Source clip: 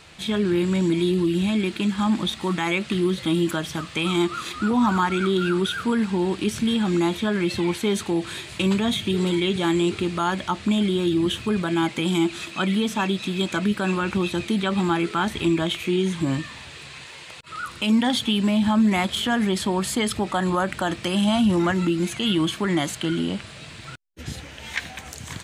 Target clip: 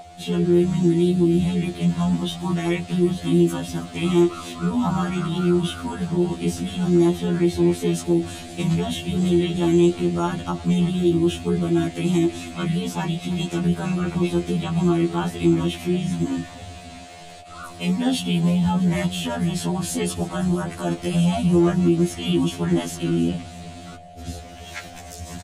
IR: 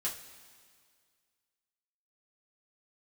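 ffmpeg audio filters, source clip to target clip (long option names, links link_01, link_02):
-filter_complex "[0:a]equalizer=frequency=1900:width=0.47:gain=-9.5,asplit=2[link_01][link_02];[link_02]asetrate=37084,aresample=44100,atempo=1.18921,volume=-4dB[link_03];[link_01][link_03]amix=inputs=2:normalize=0,aeval=exprs='val(0)+0.0251*sin(2*PI*710*n/s)':channel_layout=same,asplit=2[link_04][link_05];[link_05]asplit=6[link_06][link_07][link_08][link_09][link_10][link_11];[link_06]adelay=323,afreqshift=-38,volume=-17.5dB[link_12];[link_07]adelay=646,afreqshift=-76,volume=-21.9dB[link_13];[link_08]adelay=969,afreqshift=-114,volume=-26.4dB[link_14];[link_09]adelay=1292,afreqshift=-152,volume=-30.8dB[link_15];[link_10]adelay=1615,afreqshift=-190,volume=-35.2dB[link_16];[link_11]adelay=1938,afreqshift=-228,volume=-39.7dB[link_17];[link_12][link_13][link_14][link_15][link_16][link_17]amix=inputs=6:normalize=0[link_18];[link_04][link_18]amix=inputs=2:normalize=0,afftfilt=real='re*2*eq(mod(b,4),0)':imag='im*2*eq(mod(b,4),0)':win_size=2048:overlap=0.75,volume=3dB"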